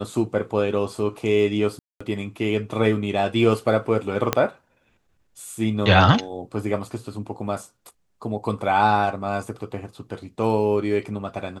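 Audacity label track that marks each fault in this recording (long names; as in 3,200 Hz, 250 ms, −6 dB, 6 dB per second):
1.790000	2.000000	drop-out 215 ms
4.330000	4.330000	click −4 dBFS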